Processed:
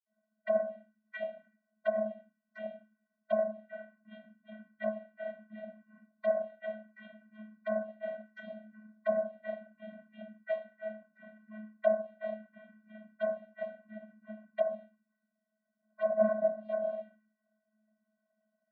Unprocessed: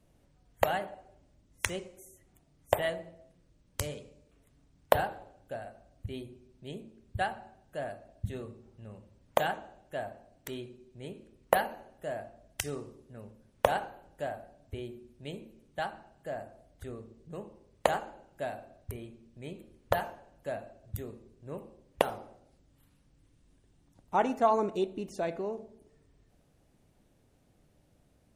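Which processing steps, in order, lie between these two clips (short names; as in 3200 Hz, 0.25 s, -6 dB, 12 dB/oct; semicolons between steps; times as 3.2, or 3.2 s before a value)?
cycle switcher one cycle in 3, inverted; gate -57 dBFS, range -7 dB; time stretch by phase-locked vocoder 0.66×; reverb RT60 0.40 s, pre-delay 46 ms; envelope phaser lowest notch 480 Hz, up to 2600 Hz, full sweep at -33.5 dBFS; high shelf 3100 Hz -9 dB; fixed phaser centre 1600 Hz, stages 8; in parallel at -6.5 dB: soft clip -38 dBFS, distortion -10 dB; on the sum: treble ducked by the level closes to 1100 Hz, closed at -36 dBFS; band shelf 1400 Hz +13 dB 2.9 oct; vocoder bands 32, square 215 Hz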